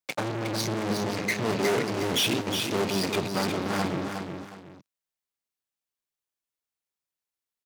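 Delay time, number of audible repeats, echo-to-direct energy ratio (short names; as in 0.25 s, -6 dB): 0.362 s, 2, -5.5 dB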